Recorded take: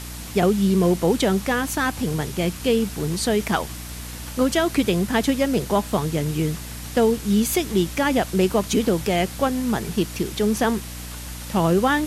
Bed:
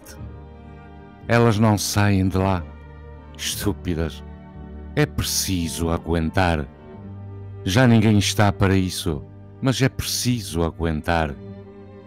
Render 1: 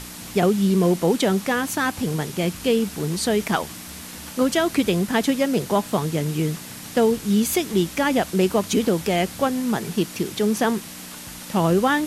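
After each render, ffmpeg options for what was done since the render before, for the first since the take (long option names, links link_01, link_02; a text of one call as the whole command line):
ffmpeg -i in.wav -af "bandreject=frequency=60:width_type=h:width=6,bandreject=frequency=120:width_type=h:width=6" out.wav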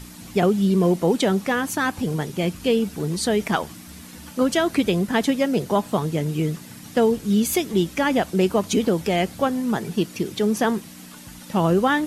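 ffmpeg -i in.wav -af "afftdn=noise_reduction=8:noise_floor=-38" out.wav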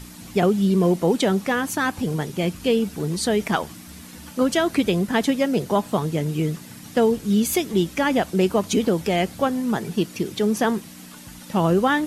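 ffmpeg -i in.wav -af anull out.wav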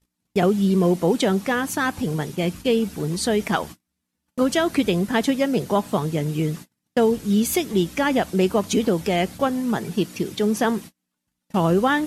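ffmpeg -i in.wav -af "agate=range=-39dB:threshold=-34dB:ratio=16:detection=peak" out.wav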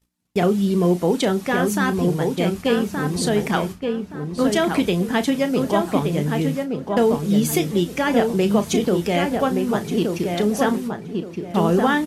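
ffmpeg -i in.wav -filter_complex "[0:a]asplit=2[link_01][link_02];[link_02]adelay=34,volume=-12dB[link_03];[link_01][link_03]amix=inputs=2:normalize=0,asplit=2[link_04][link_05];[link_05]adelay=1172,lowpass=frequency=1900:poles=1,volume=-4dB,asplit=2[link_06][link_07];[link_07]adelay=1172,lowpass=frequency=1900:poles=1,volume=0.29,asplit=2[link_08][link_09];[link_09]adelay=1172,lowpass=frequency=1900:poles=1,volume=0.29,asplit=2[link_10][link_11];[link_11]adelay=1172,lowpass=frequency=1900:poles=1,volume=0.29[link_12];[link_06][link_08][link_10][link_12]amix=inputs=4:normalize=0[link_13];[link_04][link_13]amix=inputs=2:normalize=0" out.wav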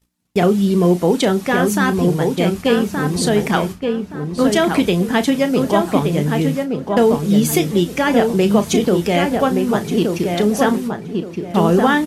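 ffmpeg -i in.wav -af "volume=4dB,alimiter=limit=-2dB:level=0:latency=1" out.wav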